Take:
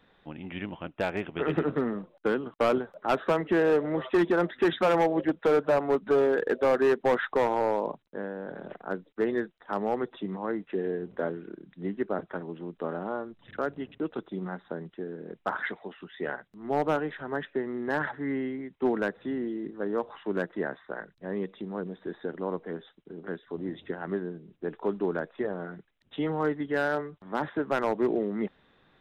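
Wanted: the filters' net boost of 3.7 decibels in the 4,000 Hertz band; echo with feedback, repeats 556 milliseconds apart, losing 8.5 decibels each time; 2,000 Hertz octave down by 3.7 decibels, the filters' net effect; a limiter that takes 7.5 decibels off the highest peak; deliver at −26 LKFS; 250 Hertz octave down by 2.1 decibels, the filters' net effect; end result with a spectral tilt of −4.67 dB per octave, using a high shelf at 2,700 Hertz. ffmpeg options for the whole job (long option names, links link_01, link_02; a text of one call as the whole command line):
ffmpeg -i in.wav -af "equalizer=frequency=250:width_type=o:gain=-3,equalizer=frequency=2000:width_type=o:gain=-7.5,highshelf=frequency=2700:gain=4,equalizer=frequency=4000:width_type=o:gain=4.5,alimiter=limit=-24dB:level=0:latency=1,aecho=1:1:556|1112|1668|2224:0.376|0.143|0.0543|0.0206,volume=9dB" out.wav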